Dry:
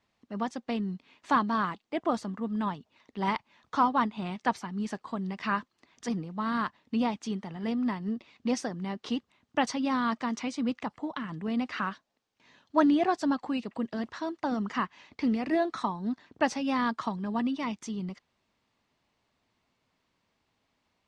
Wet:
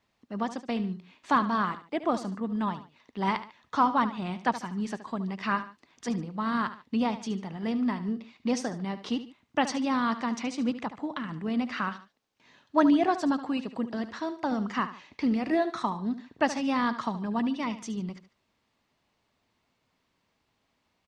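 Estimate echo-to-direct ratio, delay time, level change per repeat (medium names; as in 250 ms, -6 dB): -12.5 dB, 73 ms, -8.5 dB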